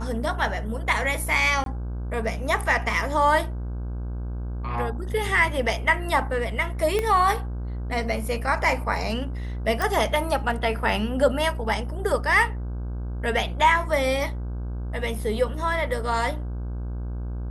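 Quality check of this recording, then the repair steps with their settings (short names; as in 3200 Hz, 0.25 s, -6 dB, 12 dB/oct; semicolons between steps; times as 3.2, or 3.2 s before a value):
buzz 60 Hz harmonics 27 -30 dBFS
1.64–1.66 gap 22 ms
6.99 pop -12 dBFS
9.82 pop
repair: de-click; de-hum 60 Hz, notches 27; interpolate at 1.64, 22 ms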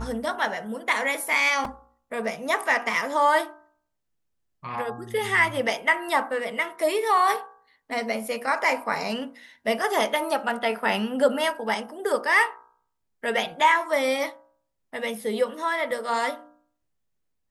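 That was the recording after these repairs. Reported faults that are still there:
6.99 pop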